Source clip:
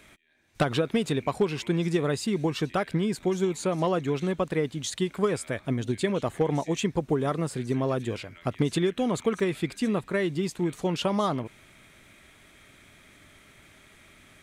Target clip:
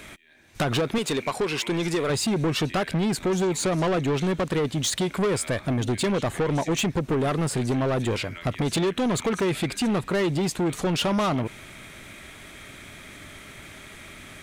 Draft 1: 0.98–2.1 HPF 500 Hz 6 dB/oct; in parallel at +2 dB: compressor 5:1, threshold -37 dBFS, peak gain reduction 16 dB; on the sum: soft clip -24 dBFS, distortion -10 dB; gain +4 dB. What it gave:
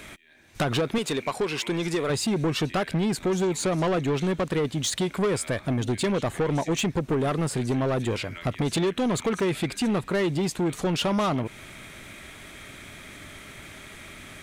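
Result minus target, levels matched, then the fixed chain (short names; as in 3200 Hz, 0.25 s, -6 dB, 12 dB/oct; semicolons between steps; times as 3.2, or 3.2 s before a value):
compressor: peak gain reduction +7 dB
0.98–2.1 HPF 500 Hz 6 dB/oct; in parallel at +2 dB: compressor 5:1, threshold -28 dBFS, peak gain reduction 9 dB; on the sum: soft clip -24 dBFS, distortion -8 dB; gain +4 dB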